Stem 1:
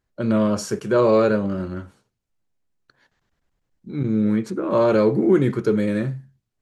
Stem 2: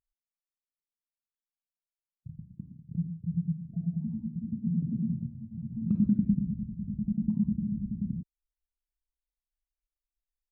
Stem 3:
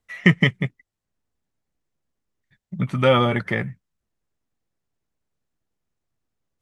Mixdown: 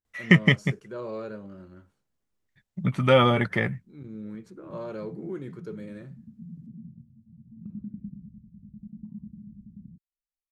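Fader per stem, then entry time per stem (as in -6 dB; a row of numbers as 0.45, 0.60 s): -19.0, -13.5, -1.5 dB; 0.00, 1.75, 0.05 s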